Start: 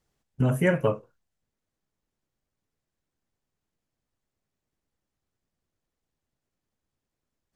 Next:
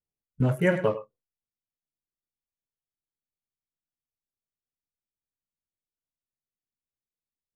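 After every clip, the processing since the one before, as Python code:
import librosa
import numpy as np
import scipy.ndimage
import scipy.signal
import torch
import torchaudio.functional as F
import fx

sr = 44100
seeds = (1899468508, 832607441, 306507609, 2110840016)

y = fx.wiener(x, sr, points=25)
y = y + 10.0 ** (-11.5 / 20.0) * np.pad(y, (int(103 * sr / 1000.0), 0))[:len(y)]
y = fx.noise_reduce_blind(y, sr, reduce_db=19)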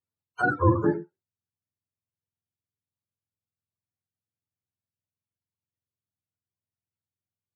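y = fx.octave_mirror(x, sr, pivot_hz=430.0)
y = y * 10.0 ** (3.0 / 20.0)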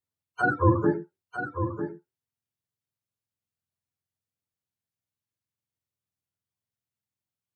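y = x + 10.0 ** (-8.5 / 20.0) * np.pad(x, (int(949 * sr / 1000.0), 0))[:len(x)]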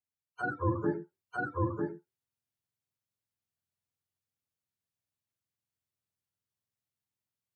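y = fx.rider(x, sr, range_db=4, speed_s=0.5)
y = y * 10.0 ** (-6.0 / 20.0)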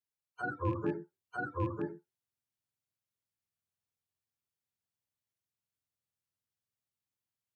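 y = fx.rattle_buzz(x, sr, strikes_db=-32.0, level_db=-39.0)
y = y * 10.0 ** (-3.0 / 20.0)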